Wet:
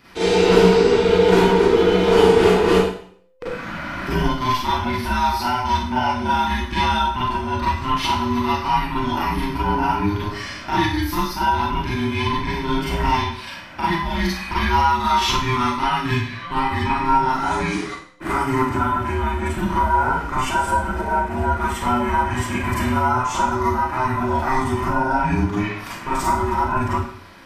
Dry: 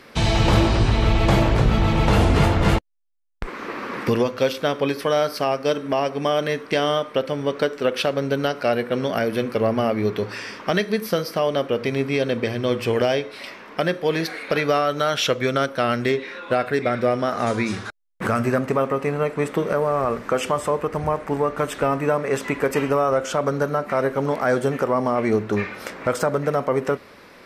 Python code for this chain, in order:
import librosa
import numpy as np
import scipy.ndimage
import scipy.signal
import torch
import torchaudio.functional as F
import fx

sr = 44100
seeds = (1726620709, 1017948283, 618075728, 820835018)

y = fx.band_invert(x, sr, width_hz=500)
y = fx.rev_schroeder(y, sr, rt60_s=0.55, comb_ms=33, drr_db=-8.5)
y = F.gain(torch.from_numpy(y), -7.0).numpy()